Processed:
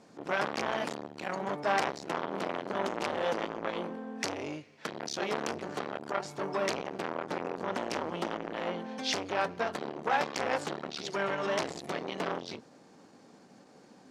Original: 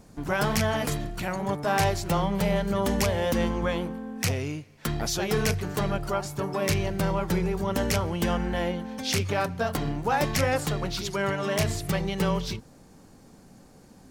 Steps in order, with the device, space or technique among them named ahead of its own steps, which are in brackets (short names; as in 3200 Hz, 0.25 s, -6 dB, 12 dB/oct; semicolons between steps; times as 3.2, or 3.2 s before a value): public-address speaker with an overloaded transformer (core saturation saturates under 1200 Hz; BPF 260–5500 Hz)